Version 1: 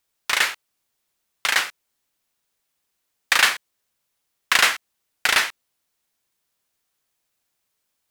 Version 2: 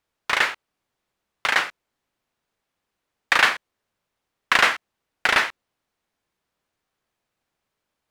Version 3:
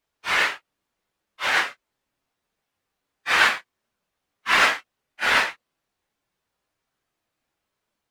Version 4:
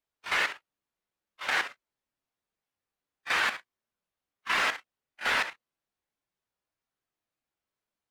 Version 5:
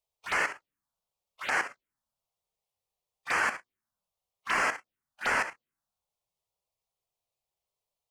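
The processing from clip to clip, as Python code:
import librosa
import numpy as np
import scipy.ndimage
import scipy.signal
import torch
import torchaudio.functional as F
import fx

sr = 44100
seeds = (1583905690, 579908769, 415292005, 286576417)

y1 = fx.lowpass(x, sr, hz=1500.0, slope=6)
y1 = y1 * 10.0 ** (4.5 / 20.0)
y2 = fx.phase_scramble(y1, sr, seeds[0], window_ms=100)
y3 = fx.level_steps(y2, sr, step_db=11)
y3 = y3 * 10.0 ** (-4.0 / 20.0)
y4 = fx.env_phaser(y3, sr, low_hz=270.0, high_hz=3700.0, full_db=-29.0)
y4 = y4 * 10.0 ** (2.5 / 20.0)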